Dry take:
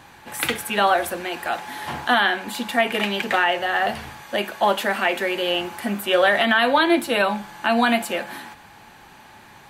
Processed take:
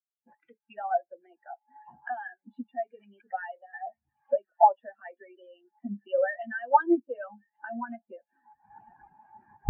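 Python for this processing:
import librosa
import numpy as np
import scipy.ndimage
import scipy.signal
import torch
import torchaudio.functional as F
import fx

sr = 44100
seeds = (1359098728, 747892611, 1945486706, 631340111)

p1 = fx.recorder_agc(x, sr, target_db=-12.5, rise_db_per_s=47.0, max_gain_db=30)
p2 = p1 + fx.echo_wet_highpass(p1, sr, ms=1137, feedback_pct=52, hz=1400.0, wet_db=-9, dry=0)
p3 = fx.hpss(p2, sr, part='harmonic', gain_db=-8)
p4 = fx.high_shelf(p3, sr, hz=5500.0, db=-11.0)
y = fx.spectral_expand(p4, sr, expansion=4.0)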